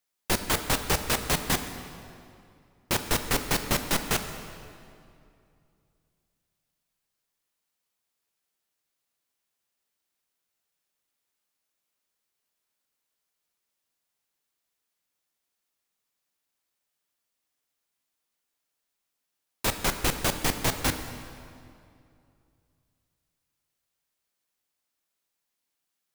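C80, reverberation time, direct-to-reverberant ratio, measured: 9.5 dB, 2.5 s, 7.5 dB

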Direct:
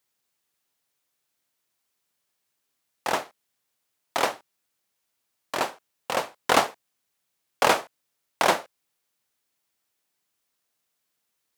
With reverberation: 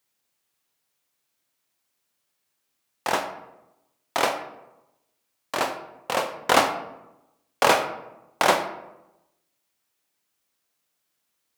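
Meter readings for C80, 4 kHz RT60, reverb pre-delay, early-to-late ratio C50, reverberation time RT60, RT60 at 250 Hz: 12.0 dB, 0.50 s, 17 ms, 9.5 dB, 0.95 s, 1.1 s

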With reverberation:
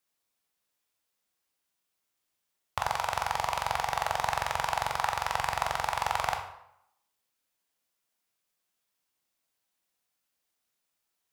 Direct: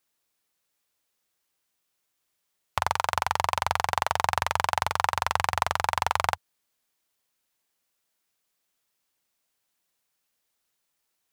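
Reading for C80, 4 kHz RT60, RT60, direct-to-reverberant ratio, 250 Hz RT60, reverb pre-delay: 11.0 dB, 0.55 s, 0.75 s, 3.5 dB, 0.65 s, 12 ms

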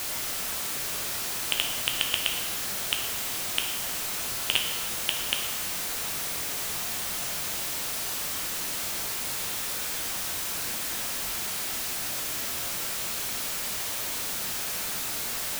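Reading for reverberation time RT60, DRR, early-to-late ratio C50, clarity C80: 1.2 s, 2.5 dB, 5.0 dB, 7.0 dB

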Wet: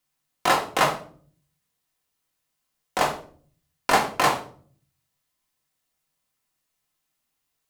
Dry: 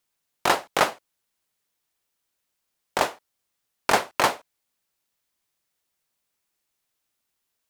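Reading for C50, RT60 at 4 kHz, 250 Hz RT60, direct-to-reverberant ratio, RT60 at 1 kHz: 10.0 dB, 0.35 s, 0.75 s, −1.0 dB, 0.40 s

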